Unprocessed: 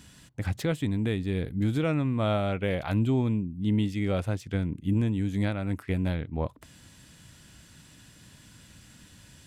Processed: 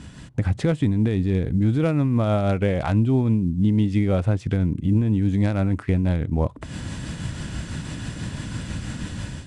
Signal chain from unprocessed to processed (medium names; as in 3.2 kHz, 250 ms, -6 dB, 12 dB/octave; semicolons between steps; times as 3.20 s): level rider gain up to 11 dB; bass shelf 240 Hz +3 dB; in parallel at -1.5 dB: peak limiter -13.5 dBFS, peak gain reduction 8.5 dB; on the sum: compression 3:1, threshold -28 dBFS, peak gain reduction 16 dB; tremolo triangle 6.1 Hz, depth 35%; treble shelf 2.4 kHz -10 dB; trim +7 dB; IMA ADPCM 88 kbps 22.05 kHz